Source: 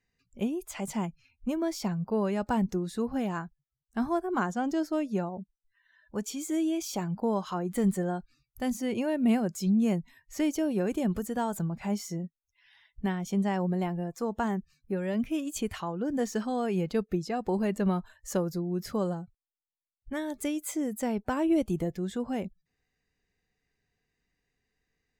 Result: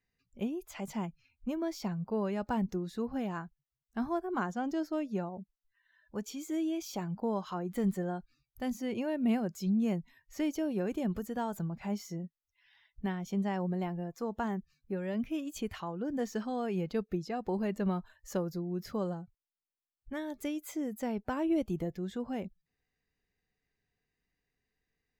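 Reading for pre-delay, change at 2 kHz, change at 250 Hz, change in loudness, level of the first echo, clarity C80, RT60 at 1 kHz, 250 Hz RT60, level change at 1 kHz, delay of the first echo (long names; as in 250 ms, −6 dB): no reverb audible, −4.5 dB, −4.5 dB, −4.5 dB, no echo audible, no reverb audible, no reverb audible, no reverb audible, −4.5 dB, no echo audible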